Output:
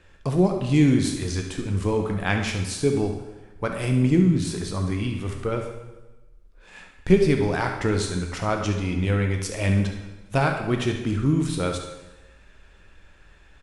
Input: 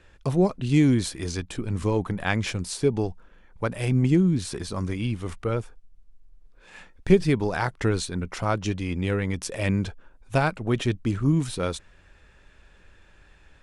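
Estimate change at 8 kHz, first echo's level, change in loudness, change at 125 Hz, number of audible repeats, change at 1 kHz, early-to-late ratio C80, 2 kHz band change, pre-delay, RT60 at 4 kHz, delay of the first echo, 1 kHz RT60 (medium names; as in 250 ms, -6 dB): +2.0 dB, -11.5 dB, +1.5 dB, +1.5 dB, 1, +1.5 dB, 8.0 dB, +2.0 dB, 6 ms, 1.0 s, 71 ms, 1.1 s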